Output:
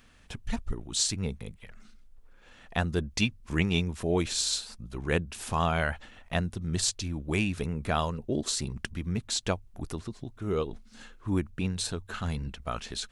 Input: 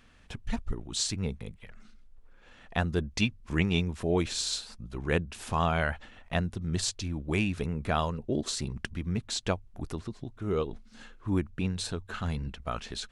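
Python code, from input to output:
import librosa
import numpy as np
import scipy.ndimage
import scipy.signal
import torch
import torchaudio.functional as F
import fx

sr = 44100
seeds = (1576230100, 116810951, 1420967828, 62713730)

y = fx.high_shelf(x, sr, hz=6500.0, db=7.5)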